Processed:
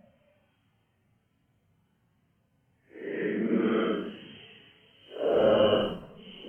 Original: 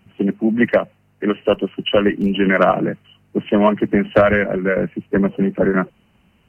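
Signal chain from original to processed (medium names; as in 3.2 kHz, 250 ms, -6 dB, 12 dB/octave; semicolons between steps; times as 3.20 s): Doppler pass-by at 1.83 s, 28 m/s, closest 22 m; Paulstretch 9.3×, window 0.05 s, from 0.81 s; trim -8.5 dB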